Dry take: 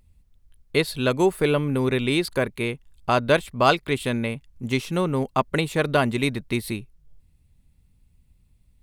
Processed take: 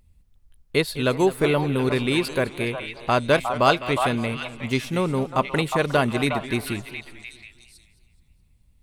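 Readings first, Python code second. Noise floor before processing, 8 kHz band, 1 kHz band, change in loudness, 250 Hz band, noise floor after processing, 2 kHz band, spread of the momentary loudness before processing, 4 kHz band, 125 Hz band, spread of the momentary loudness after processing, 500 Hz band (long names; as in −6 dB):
−61 dBFS, +0.5 dB, +1.5 dB, +0.5 dB, 0.0 dB, −60 dBFS, +1.0 dB, 9 LU, +0.5 dB, 0.0 dB, 11 LU, +0.5 dB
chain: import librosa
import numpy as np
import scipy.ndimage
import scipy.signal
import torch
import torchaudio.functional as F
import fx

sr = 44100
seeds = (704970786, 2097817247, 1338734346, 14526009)

y = fx.echo_stepped(x, sr, ms=360, hz=910.0, octaves=1.4, feedback_pct=70, wet_db=-3.5)
y = fx.echo_warbled(y, sr, ms=211, feedback_pct=46, rate_hz=2.8, cents=161, wet_db=-15.0)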